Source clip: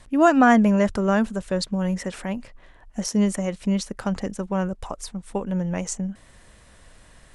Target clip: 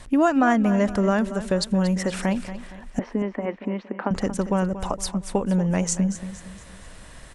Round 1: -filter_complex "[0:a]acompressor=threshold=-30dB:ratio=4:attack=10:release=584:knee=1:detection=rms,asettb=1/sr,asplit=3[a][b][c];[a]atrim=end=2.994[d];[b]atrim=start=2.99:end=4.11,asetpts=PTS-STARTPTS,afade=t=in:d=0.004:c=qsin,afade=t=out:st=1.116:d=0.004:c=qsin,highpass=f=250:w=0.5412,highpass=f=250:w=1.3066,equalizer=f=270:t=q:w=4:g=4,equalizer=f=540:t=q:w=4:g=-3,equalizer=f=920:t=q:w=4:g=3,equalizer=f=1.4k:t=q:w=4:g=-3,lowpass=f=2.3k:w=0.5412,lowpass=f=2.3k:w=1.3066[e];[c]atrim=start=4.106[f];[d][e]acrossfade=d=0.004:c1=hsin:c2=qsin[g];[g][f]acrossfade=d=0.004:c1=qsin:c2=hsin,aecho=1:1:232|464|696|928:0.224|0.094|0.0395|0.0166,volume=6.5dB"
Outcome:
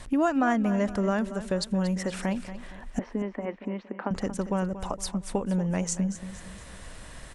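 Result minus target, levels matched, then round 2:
compressor: peak gain reduction +5 dB
-filter_complex "[0:a]acompressor=threshold=-23dB:ratio=4:attack=10:release=584:knee=1:detection=rms,asettb=1/sr,asplit=3[a][b][c];[a]atrim=end=2.994[d];[b]atrim=start=2.99:end=4.11,asetpts=PTS-STARTPTS,afade=t=in:d=0.004:c=qsin,afade=t=out:st=1.116:d=0.004:c=qsin,highpass=f=250:w=0.5412,highpass=f=250:w=1.3066,equalizer=f=270:t=q:w=4:g=4,equalizer=f=540:t=q:w=4:g=-3,equalizer=f=920:t=q:w=4:g=3,equalizer=f=1.4k:t=q:w=4:g=-3,lowpass=f=2.3k:w=0.5412,lowpass=f=2.3k:w=1.3066[e];[c]atrim=start=4.106[f];[d][e]acrossfade=d=0.004:c1=hsin:c2=qsin[g];[g][f]acrossfade=d=0.004:c1=qsin:c2=hsin,aecho=1:1:232|464|696|928:0.224|0.094|0.0395|0.0166,volume=6.5dB"

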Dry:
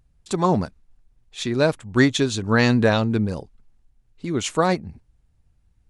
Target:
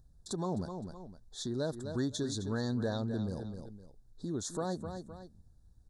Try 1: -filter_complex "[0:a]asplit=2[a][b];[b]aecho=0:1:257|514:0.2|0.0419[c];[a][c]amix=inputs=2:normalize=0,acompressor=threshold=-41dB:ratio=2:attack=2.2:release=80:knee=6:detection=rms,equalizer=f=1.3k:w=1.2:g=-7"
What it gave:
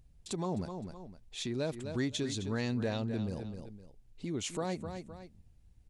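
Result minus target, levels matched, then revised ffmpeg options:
2000 Hz band +3.5 dB
-filter_complex "[0:a]asplit=2[a][b];[b]aecho=0:1:257|514:0.2|0.0419[c];[a][c]amix=inputs=2:normalize=0,acompressor=threshold=-41dB:ratio=2:attack=2.2:release=80:knee=6:detection=rms,asuperstop=centerf=2500:order=12:qfactor=1.4,equalizer=f=1.3k:w=1.2:g=-7"

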